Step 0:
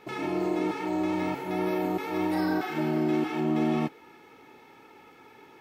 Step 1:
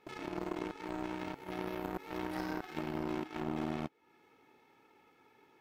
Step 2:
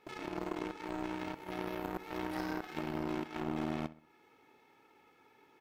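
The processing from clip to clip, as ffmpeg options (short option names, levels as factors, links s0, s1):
-af "acompressor=threshold=0.00794:ratio=2,aeval=exprs='0.0422*(cos(1*acos(clip(val(0)/0.0422,-1,1)))-cos(1*PI/2))+0.0119*(cos(3*acos(clip(val(0)/0.0422,-1,1)))-cos(3*PI/2))':c=same,volume=1.41"
-filter_complex "[0:a]equalizer=f=160:t=o:w=2.8:g=-2,asplit=2[s0][s1];[s1]adelay=64,lowpass=f=3100:p=1,volume=0.141,asplit=2[s2][s3];[s3]adelay=64,lowpass=f=3100:p=1,volume=0.43,asplit=2[s4][s5];[s5]adelay=64,lowpass=f=3100:p=1,volume=0.43,asplit=2[s6][s7];[s7]adelay=64,lowpass=f=3100:p=1,volume=0.43[s8];[s0][s2][s4][s6][s8]amix=inputs=5:normalize=0,volume=1.12"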